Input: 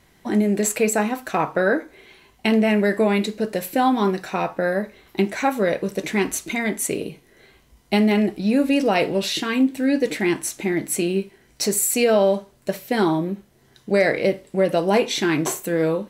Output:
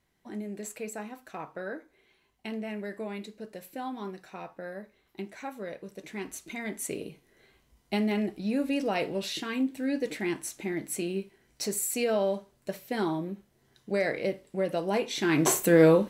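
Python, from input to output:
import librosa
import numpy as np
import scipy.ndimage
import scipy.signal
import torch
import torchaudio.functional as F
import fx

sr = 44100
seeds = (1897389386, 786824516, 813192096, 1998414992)

y = fx.gain(x, sr, db=fx.line((5.98, -18.0), (6.91, -10.0), (15.12, -10.0), (15.56, 2.5)))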